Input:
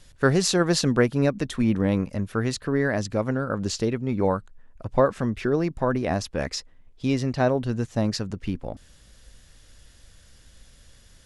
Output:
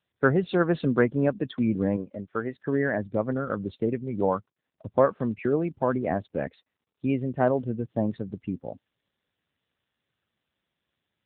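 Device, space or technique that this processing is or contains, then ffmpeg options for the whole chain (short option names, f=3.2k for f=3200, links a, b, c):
mobile call with aggressive noise cancelling: -filter_complex "[0:a]asettb=1/sr,asplit=3[a][b][c];[a]atrim=end=1.964[d];[b]atrim=start=1.96:end=2.58,asetpts=PTS-STARTPTS,afade=t=in:d=0.004:c=qsin,afade=t=out:st=0.616:d=0.004:c=qsin,bass=f=250:g=-9,treble=f=4k:g=-8[e];[c]atrim=start=2.576[f];[d][e]acrossfade=d=0.004:c1=hsin:c2=qsin[g];[g][f]acrossfade=d=0.004:c1=qsin:c2=hsin,highpass=f=150:p=1,afftdn=nr=19:nf=-33" -ar 8000 -c:a libopencore_amrnb -b:a 7950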